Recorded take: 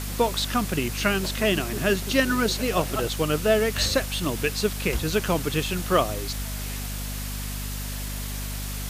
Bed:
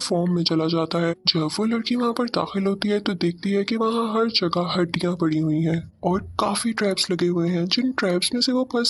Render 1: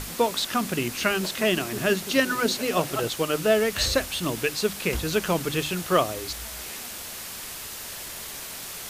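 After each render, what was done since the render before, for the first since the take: hum notches 50/100/150/200/250/300 Hz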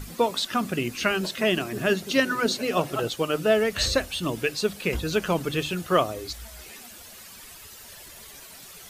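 noise reduction 11 dB, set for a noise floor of -37 dBFS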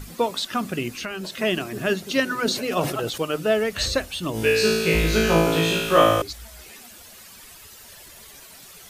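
0.91–1.37 s: compression 3:1, threshold -29 dBFS; 2.41–3.21 s: decay stretcher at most 69 dB/s; 4.32–6.22 s: flutter echo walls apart 3.1 m, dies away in 1.2 s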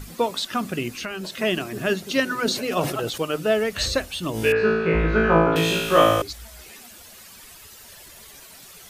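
4.52–5.56 s: resonant low-pass 1.4 kHz, resonance Q 2.1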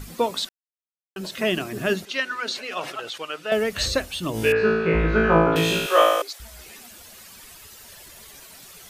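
0.49–1.16 s: mute; 2.05–3.52 s: band-pass filter 2.2 kHz, Q 0.67; 5.86–6.40 s: high-pass 430 Hz 24 dB/octave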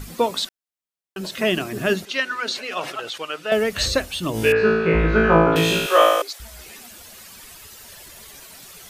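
trim +2.5 dB; peak limiter -3 dBFS, peak gain reduction 1 dB

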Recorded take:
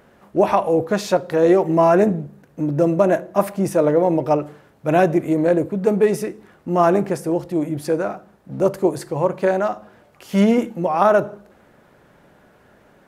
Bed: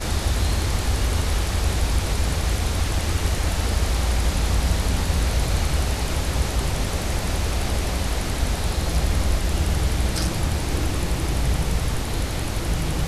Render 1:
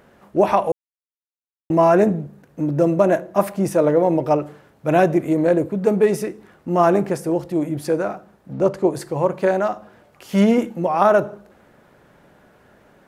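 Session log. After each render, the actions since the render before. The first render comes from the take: 0.72–1.70 s: mute; 8.53–8.95 s: distance through air 59 m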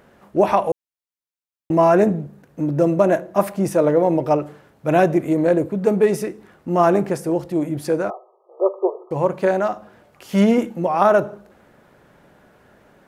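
8.10–9.11 s: brick-wall FIR band-pass 350–1300 Hz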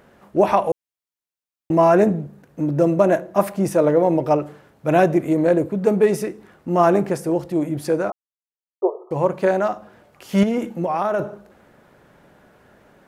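8.12–8.82 s: mute; 10.43–11.20 s: compression, threshold -17 dBFS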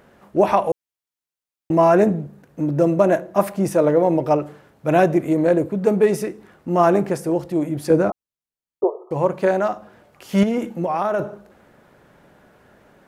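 7.90–8.84 s: bass shelf 370 Hz +11 dB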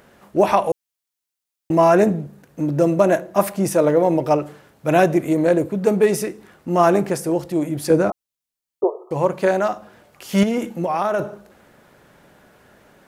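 treble shelf 2.6 kHz +7 dB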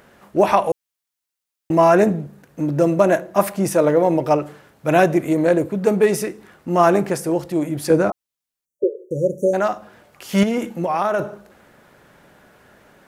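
peaking EQ 1.6 kHz +2 dB 1.6 oct; 8.66–9.54 s: spectral selection erased 590–5600 Hz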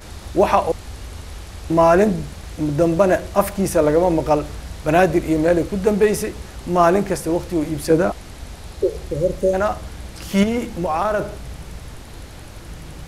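add bed -12 dB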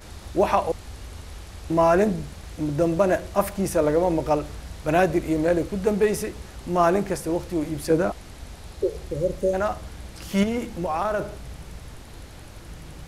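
trim -5 dB

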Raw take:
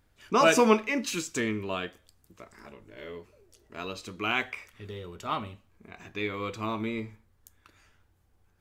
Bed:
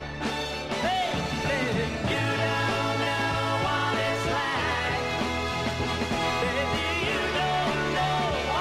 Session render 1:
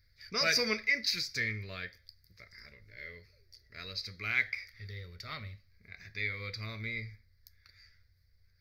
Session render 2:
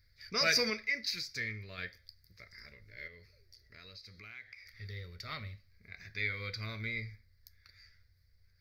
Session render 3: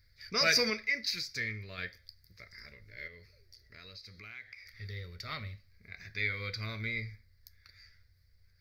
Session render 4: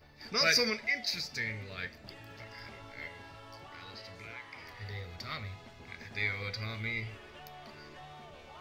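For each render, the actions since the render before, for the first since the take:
FFT filter 110 Hz 0 dB, 310 Hz -21 dB, 530 Hz -10 dB, 890 Hz -26 dB, 2.1 kHz +7 dB, 2.9 kHz -18 dB, 4.7 kHz +14 dB, 7.6 kHz -20 dB, 13 kHz -2 dB
0.70–1.78 s: gain -4.5 dB; 3.07–4.66 s: compression 3:1, threshold -52 dBFS; 6.10–6.92 s: small resonant body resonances 1.5/3.2 kHz, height 10 dB
trim +2 dB
add bed -24.5 dB

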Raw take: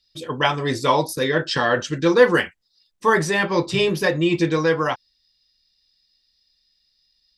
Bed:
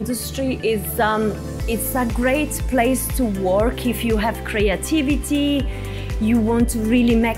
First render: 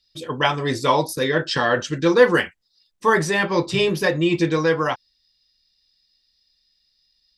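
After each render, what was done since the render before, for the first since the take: no audible change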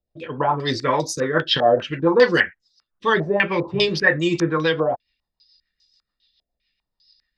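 rotary cabinet horn 7 Hz; step-sequenced low-pass 5 Hz 670–6600 Hz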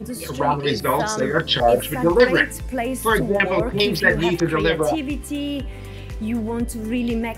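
add bed -7 dB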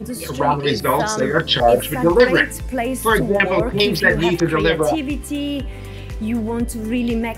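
trim +2.5 dB; peak limiter -1 dBFS, peak gain reduction 1.5 dB

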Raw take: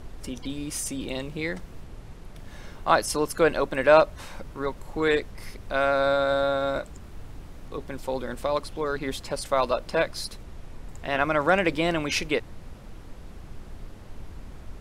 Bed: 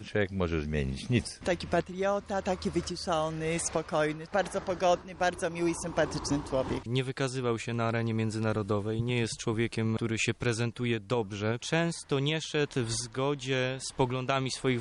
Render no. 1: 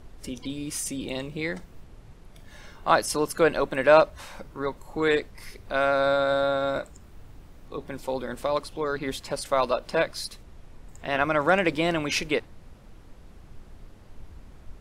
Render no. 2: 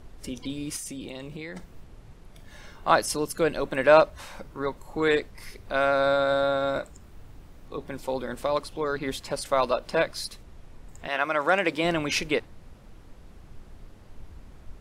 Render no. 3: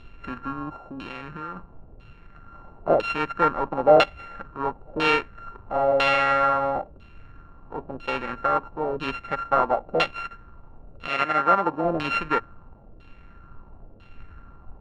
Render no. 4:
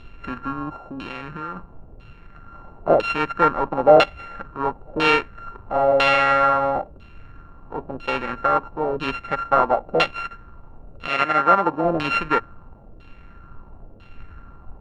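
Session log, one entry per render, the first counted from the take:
noise print and reduce 6 dB
0.76–1.56 s: compression, threshold -33 dBFS; 3.14–3.65 s: peaking EQ 1.1 kHz -6.5 dB 2.4 oct; 11.07–11.83 s: high-pass 870 Hz -> 240 Hz 6 dB/octave
sorted samples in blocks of 32 samples; LFO low-pass saw down 1 Hz 530–3300 Hz
trim +3.5 dB; peak limiter -2 dBFS, peak gain reduction 2 dB

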